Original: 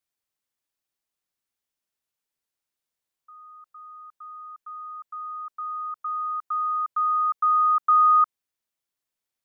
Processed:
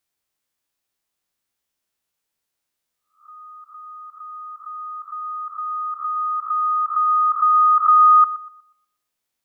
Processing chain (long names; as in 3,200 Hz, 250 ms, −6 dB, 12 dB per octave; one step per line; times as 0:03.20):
peak hold with a rise ahead of every peak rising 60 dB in 0.37 s
feedback echo with a low-pass in the loop 121 ms, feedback 43%, low-pass 1,200 Hz, level −12.5 dB
level +5 dB